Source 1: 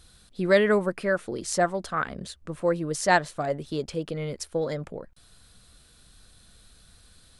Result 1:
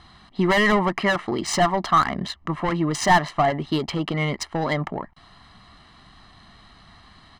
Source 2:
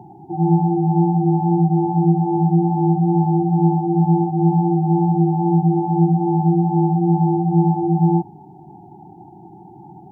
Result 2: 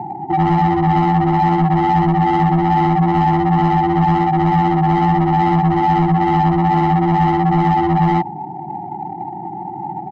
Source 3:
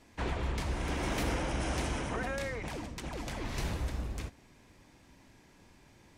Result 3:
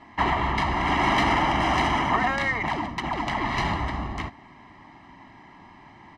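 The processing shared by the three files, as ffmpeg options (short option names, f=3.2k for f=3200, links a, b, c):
-filter_complex "[0:a]adynamicsmooth=sensitivity=6:basefreq=2.4k,highshelf=f=3.5k:g=5.5,asplit=2[a][b];[b]highpass=f=720:p=1,volume=25dB,asoftclip=type=tanh:threshold=-4dB[c];[a][c]amix=inputs=2:normalize=0,lowpass=f=1.7k:p=1,volume=-6dB,acompressor=threshold=-14dB:ratio=3,aecho=1:1:1:0.82,volume=-1.5dB"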